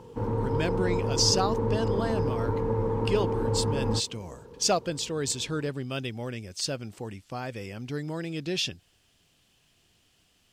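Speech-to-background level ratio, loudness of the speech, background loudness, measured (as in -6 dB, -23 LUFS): -2.0 dB, -30.5 LUFS, -28.5 LUFS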